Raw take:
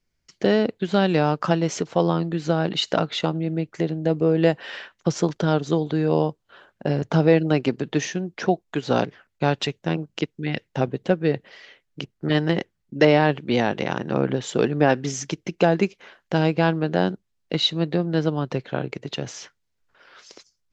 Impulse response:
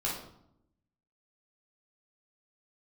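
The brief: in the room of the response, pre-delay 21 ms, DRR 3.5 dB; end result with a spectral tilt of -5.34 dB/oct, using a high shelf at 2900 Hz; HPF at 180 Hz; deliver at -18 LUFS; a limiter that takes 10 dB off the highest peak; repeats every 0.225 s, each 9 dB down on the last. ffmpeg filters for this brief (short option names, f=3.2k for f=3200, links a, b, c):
-filter_complex "[0:a]highpass=180,highshelf=f=2.9k:g=-8,alimiter=limit=-14.5dB:level=0:latency=1,aecho=1:1:225|450|675|900:0.355|0.124|0.0435|0.0152,asplit=2[a][b];[1:a]atrim=start_sample=2205,adelay=21[c];[b][c]afir=irnorm=-1:irlink=0,volume=-9.5dB[d];[a][d]amix=inputs=2:normalize=0,volume=7.5dB"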